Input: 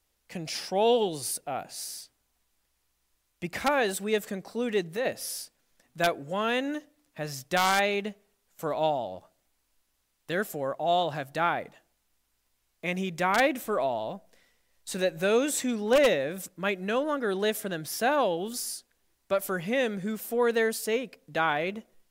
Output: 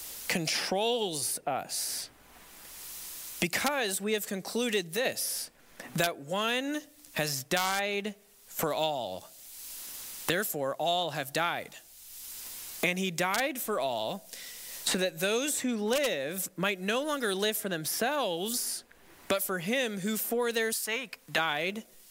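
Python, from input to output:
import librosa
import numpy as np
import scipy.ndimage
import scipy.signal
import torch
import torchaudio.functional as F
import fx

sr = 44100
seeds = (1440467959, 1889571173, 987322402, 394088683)

y = fx.low_shelf_res(x, sr, hz=690.0, db=-10.0, q=1.5, at=(20.72, 21.38))
y = fx.high_shelf(y, sr, hz=3400.0, db=11.5)
y = fx.band_squash(y, sr, depth_pct=100)
y = y * 10.0 ** (-4.5 / 20.0)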